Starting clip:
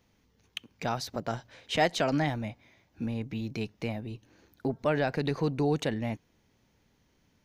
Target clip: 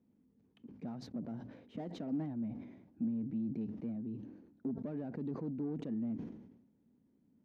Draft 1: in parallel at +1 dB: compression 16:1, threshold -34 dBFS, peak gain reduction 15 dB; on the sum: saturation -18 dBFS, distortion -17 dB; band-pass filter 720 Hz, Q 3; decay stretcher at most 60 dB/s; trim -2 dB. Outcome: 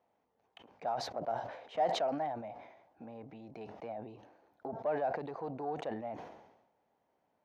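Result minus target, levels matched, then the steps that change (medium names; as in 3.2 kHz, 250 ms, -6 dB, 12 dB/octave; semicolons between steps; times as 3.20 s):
1 kHz band +17.0 dB; saturation: distortion -7 dB
change: saturation -25 dBFS, distortion -10 dB; change: band-pass filter 240 Hz, Q 3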